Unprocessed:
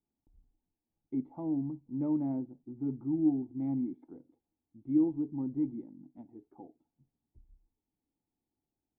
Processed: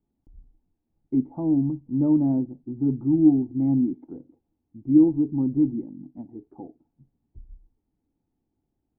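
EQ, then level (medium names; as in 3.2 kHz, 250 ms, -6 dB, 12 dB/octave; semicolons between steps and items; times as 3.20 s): low-pass 1 kHz 6 dB/octave; tilt EQ -1.5 dB/octave; +8.5 dB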